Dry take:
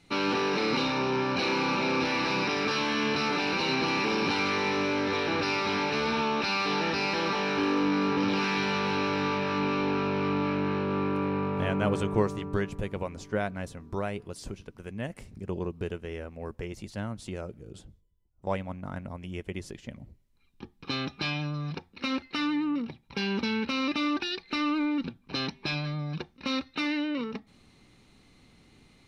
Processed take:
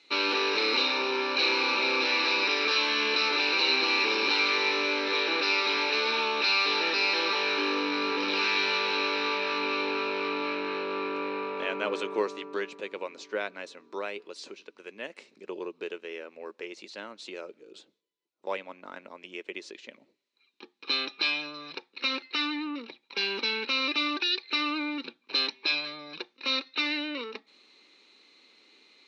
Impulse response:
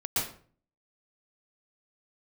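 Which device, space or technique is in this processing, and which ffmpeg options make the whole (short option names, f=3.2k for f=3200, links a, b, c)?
phone speaker on a table: -af "highpass=f=340:w=0.5412,highpass=f=340:w=1.3066,equalizer=f=720:t=q:w=4:g=-7,equalizer=f=2.5k:t=q:w=4:g=6,equalizer=f=4k:t=q:w=4:g=9,lowpass=f=6.9k:w=0.5412,lowpass=f=6.9k:w=1.3066"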